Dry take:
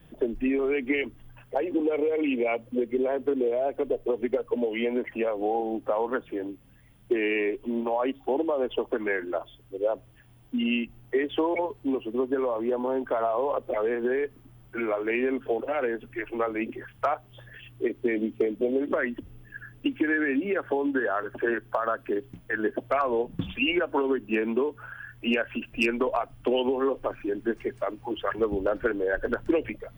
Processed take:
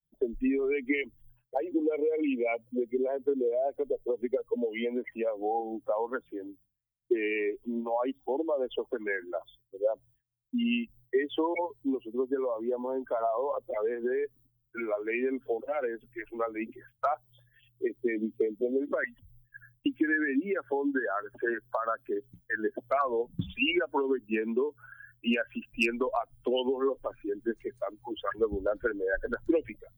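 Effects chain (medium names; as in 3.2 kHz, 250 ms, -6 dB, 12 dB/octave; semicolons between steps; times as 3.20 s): expander on every frequency bin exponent 1.5; expander -53 dBFS; 19.04–19.86 s: Chebyshev band-stop 160–760 Hz, order 2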